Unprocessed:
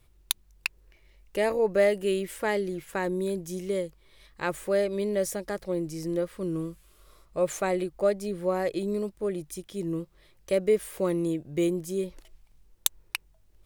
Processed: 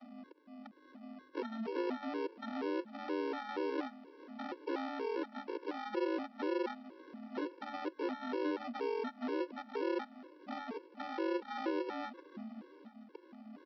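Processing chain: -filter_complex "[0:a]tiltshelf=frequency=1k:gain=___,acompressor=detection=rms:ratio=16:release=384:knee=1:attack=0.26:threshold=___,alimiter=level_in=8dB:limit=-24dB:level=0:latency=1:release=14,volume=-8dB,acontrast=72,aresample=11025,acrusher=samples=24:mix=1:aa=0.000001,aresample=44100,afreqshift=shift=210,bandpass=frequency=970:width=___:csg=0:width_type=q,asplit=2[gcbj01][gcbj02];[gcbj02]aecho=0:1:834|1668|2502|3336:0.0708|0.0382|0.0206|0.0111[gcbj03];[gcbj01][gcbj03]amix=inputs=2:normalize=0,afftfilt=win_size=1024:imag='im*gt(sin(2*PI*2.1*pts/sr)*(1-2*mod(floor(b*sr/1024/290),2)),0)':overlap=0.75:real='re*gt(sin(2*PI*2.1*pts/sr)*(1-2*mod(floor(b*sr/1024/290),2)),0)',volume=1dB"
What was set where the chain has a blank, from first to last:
8.5, -27dB, 0.53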